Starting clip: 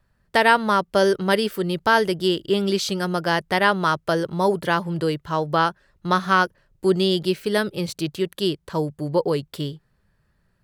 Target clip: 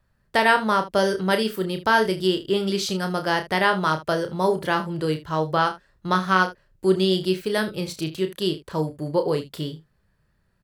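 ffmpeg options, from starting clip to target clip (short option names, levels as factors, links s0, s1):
-af "aecho=1:1:32|76:0.422|0.158,volume=0.794"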